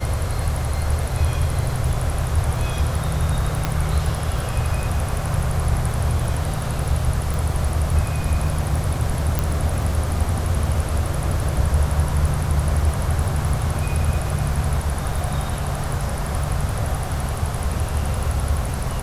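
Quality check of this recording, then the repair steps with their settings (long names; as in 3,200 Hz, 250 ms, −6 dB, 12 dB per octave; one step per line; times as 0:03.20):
surface crackle 26 per second −28 dBFS
0:03.65: click −6 dBFS
0:07.34: click
0:09.39: click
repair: click removal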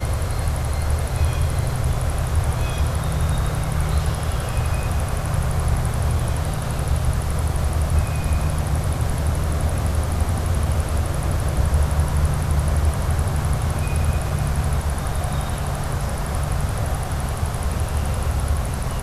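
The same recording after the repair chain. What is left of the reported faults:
0:03.65: click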